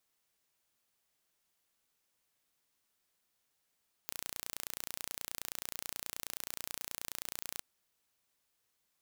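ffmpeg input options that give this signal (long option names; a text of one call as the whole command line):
ffmpeg -f lavfi -i "aevalsrc='0.251*eq(mod(n,1500),0)':duration=3.51:sample_rate=44100" out.wav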